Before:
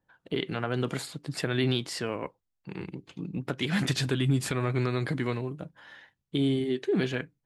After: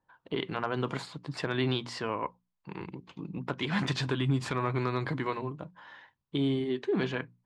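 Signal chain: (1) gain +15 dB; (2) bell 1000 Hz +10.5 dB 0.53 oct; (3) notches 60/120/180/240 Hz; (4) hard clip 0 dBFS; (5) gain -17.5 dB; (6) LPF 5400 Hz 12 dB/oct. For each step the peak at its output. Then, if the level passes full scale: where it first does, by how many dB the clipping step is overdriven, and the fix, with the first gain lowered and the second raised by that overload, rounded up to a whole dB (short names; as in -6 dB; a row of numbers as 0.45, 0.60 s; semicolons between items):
+1.5, +4.0, +3.5, 0.0, -17.5, -17.0 dBFS; step 1, 3.5 dB; step 1 +11 dB, step 5 -13.5 dB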